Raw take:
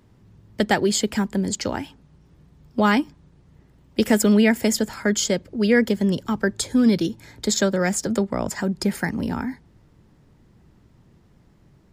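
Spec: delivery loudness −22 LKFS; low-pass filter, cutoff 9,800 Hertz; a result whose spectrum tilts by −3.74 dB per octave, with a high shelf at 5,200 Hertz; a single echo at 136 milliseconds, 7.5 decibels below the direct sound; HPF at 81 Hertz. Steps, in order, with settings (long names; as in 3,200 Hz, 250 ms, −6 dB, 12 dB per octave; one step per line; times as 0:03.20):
high-pass filter 81 Hz
low-pass filter 9,800 Hz
high-shelf EQ 5,200 Hz +7 dB
single-tap delay 136 ms −7.5 dB
level −1.5 dB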